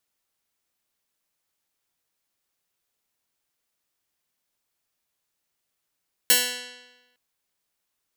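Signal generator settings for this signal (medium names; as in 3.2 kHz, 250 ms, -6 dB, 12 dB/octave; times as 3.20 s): plucked string B3, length 0.86 s, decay 1.13 s, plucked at 0.2, bright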